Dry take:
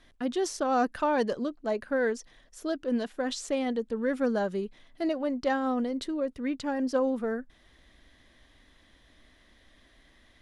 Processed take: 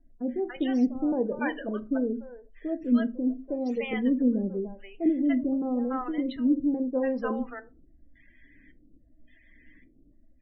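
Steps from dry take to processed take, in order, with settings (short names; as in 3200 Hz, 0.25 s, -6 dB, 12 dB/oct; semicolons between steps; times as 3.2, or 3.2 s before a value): LFO low-pass square 0.89 Hz 300–2500 Hz; loudest bins only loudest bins 32; bands offset in time lows, highs 0.29 s, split 700 Hz; on a send at -9.5 dB: reverb RT60 0.30 s, pre-delay 4 ms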